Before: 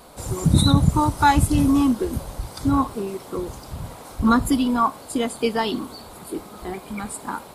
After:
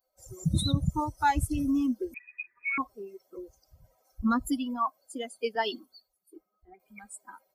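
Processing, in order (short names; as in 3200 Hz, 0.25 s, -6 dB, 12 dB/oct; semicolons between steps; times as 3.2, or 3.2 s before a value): per-bin expansion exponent 2; 2.14–2.78 inverted band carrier 2500 Hz; 5.55–6.8 three-band expander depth 100%; gain -6.5 dB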